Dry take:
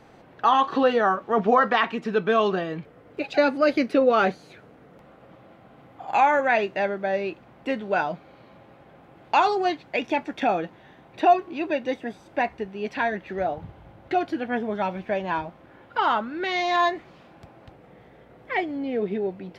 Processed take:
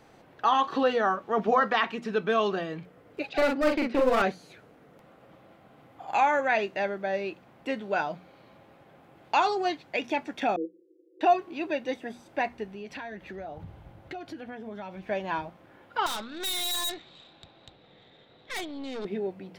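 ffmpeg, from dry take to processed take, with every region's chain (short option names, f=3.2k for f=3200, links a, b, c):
-filter_complex "[0:a]asettb=1/sr,asplit=3[a][b][c];[a]atrim=end=3.294[d];[b]atrim=start=3.29:end=4.22,asetpts=PTS-STARTPTS,afade=t=in:d=0.004:c=qsin,afade=t=out:st=0.926:d=0.004:c=qsin,highpass=100,lowpass=3.2k,aeval=exprs='clip(val(0),-1,0.0794)':c=same,asplit=2[e][f];[f]adelay=43,volume=-3dB[g];[e][g]amix=inputs=2:normalize=0,atrim=end_sample=41013[h];[c]atrim=start=4.216[i];[d][h]acrossfade=d=0.004:c1=hsin:c2=qsin[j];[j][i]acrossfade=d=0.004:c1=qsin:c2=hsin,asettb=1/sr,asplit=3[k][l][m];[k]atrim=end=10.564[n];[l]atrim=start=10.56:end=11.21,asetpts=PTS-STARTPTS,afade=t=in:d=0.004:c=qsin,afade=t=out:st=0.646:d=0.004:c=qsin,asuperpass=centerf=390:order=12:qfactor=2.1,aecho=1:1:5.9:0.8,atrim=end_sample=28665[o];[m]atrim=start=11.206[p];[n][o]acrossfade=d=0.004:c1=hsin:c2=qsin[q];[q][p]acrossfade=d=0.004:c1=qsin:c2=hsin,asettb=1/sr,asplit=3[r][s][t];[r]atrim=end=12.714[u];[s]atrim=start=12.71:end=15.03,asetpts=PTS-STARTPTS,afade=t=in:d=0.004:c=qsin,afade=t=out:st=2.316:d=0.004:c=qsin,lowshelf=f=130:g=8.5,acompressor=threshold=-32dB:ratio=5:attack=3.2:release=140:knee=1:detection=peak[v];[t]atrim=start=15.026[w];[u][v]acrossfade=d=0.004:c1=hsin:c2=qsin[x];[x][w]acrossfade=d=0.004:c1=qsin:c2=hsin,asettb=1/sr,asplit=3[y][z][aa];[y]atrim=end=16.064[ab];[z]atrim=start=16.06:end=19.05,asetpts=PTS-STARTPTS,afade=t=in:d=0.004:c=qsin,afade=t=out:st=2.986:d=0.004:c=qsin,lowpass=f=3.8k:t=q:w=16,aeval=exprs='(tanh(25.1*val(0)+0.65)-tanh(0.65))/25.1':c=same[ac];[aa]atrim=start=19.046[ad];[ab][ac]acrossfade=d=0.004:c1=hsin:c2=qsin[ae];[ae][ad]acrossfade=d=0.004:c1=qsin:c2=hsin,highshelf=f=4.7k:g=7.5,bandreject=f=60:t=h:w=6,bandreject=f=120:t=h:w=6,bandreject=f=180:t=h:w=6,bandreject=f=240:t=h:w=6,volume=-4.5dB"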